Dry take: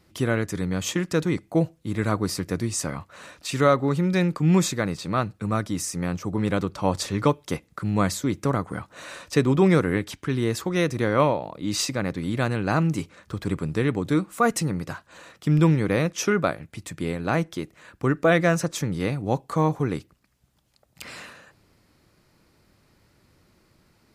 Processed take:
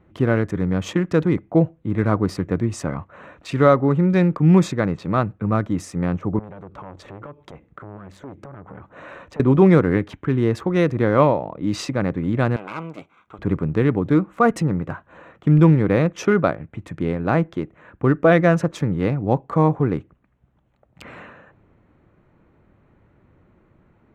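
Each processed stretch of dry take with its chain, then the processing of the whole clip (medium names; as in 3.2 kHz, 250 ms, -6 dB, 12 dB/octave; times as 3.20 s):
6.39–9.40 s: compression 5:1, threshold -34 dBFS + transformer saturation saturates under 1.5 kHz
12.56–13.39 s: comb filter that takes the minimum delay 0.85 ms + high-pass 1.2 kHz 6 dB/octave + band-stop 1.8 kHz, Q 5.5
whole clip: local Wiener filter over 9 samples; low-pass 1.5 kHz 6 dB/octave; trim +5.5 dB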